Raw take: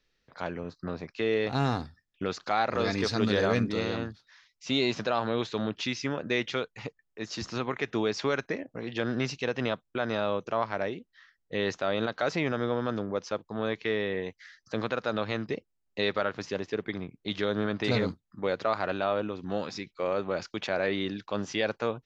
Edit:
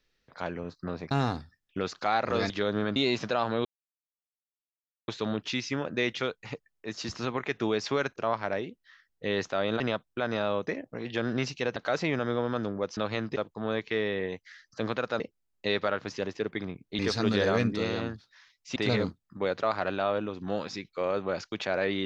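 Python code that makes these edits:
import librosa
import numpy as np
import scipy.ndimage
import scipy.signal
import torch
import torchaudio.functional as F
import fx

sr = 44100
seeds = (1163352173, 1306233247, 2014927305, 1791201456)

y = fx.edit(x, sr, fx.cut(start_s=1.11, length_s=0.45),
    fx.swap(start_s=2.95, length_s=1.77, other_s=17.32, other_length_s=0.46),
    fx.insert_silence(at_s=5.41, length_s=1.43),
    fx.swap(start_s=8.49, length_s=1.09, other_s=10.45, other_length_s=1.64),
    fx.move(start_s=15.14, length_s=0.39, to_s=13.3), tone=tone)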